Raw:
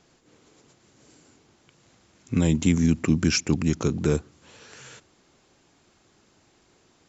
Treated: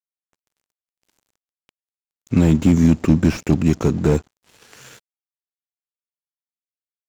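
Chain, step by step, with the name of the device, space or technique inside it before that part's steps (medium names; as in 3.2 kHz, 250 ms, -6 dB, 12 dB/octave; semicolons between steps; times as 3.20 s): early transistor amplifier (crossover distortion -48.5 dBFS; slew-rate limiter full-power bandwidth 45 Hz); trim +7.5 dB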